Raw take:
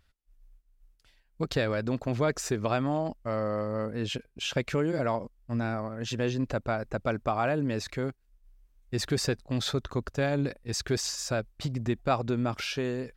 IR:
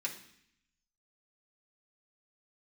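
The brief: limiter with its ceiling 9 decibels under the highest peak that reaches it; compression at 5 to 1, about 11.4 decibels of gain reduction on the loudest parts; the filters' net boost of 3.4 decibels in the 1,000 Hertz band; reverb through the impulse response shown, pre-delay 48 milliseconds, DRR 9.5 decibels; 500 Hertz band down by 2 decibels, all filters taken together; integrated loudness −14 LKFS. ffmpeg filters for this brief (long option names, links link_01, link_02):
-filter_complex "[0:a]equalizer=frequency=500:width_type=o:gain=-4.5,equalizer=frequency=1000:width_type=o:gain=6.5,acompressor=threshold=-32dB:ratio=5,alimiter=level_in=3.5dB:limit=-24dB:level=0:latency=1,volume=-3.5dB,asplit=2[link_01][link_02];[1:a]atrim=start_sample=2205,adelay=48[link_03];[link_02][link_03]afir=irnorm=-1:irlink=0,volume=-11dB[link_04];[link_01][link_04]amix=inputs=2:normalize=0,volume=24dB"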